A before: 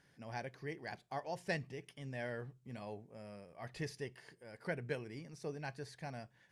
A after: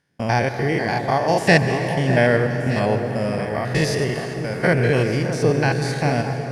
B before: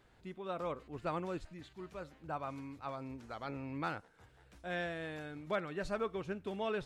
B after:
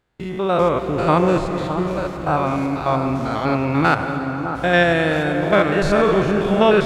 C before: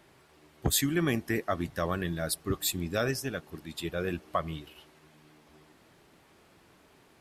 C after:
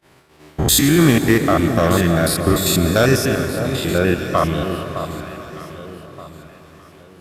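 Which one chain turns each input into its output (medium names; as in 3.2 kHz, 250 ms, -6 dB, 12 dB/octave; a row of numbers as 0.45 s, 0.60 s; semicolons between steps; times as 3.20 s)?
spectrogram pixelated in time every 100 ms; gate -60 dBFS, range -27 dB; overload inside the chain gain 22.5 dB; on a send: echo whose repeats swap between lows and highs 611 ms, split 1.3 kHz, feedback 54%, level -9 dB; on the sum: plate-style reverb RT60 4.7 s, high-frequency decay 0.6×, pre-delay 120 ms, DRR 8 dB; peak normalisation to -2 dBFS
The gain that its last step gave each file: +26.5 dB, +24.0 dB, +17.0 dB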